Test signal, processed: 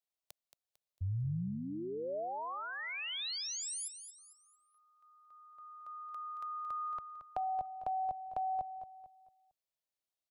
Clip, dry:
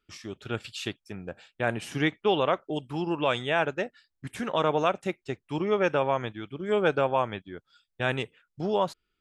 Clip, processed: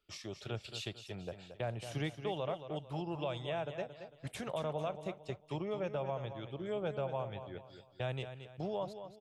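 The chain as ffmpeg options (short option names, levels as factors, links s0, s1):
-filter_complex "[0:a]equalizer=f=250:t=o:w=0.67:g=-6,equalizer=f=630:t=o:w=0.67:g=8,equalizer=f=1600:t=o:w=0.67:g=-5,equalizer=f=4000:t=o:w=0.67:g=4,acrossover=split=170[s0][s1];[s1]acompressor=threshold=0.01:ratio=2.5[s2];[s0][s2]amix=inputs=2:normalize=0,asplit=2[s3][s4];[s4]aecho=0:1:225|450|675|900:0.316|0.117|0.0433|0.016[s5];[s3][s5]amix=inputs=2:normalize=0,volume=0.708"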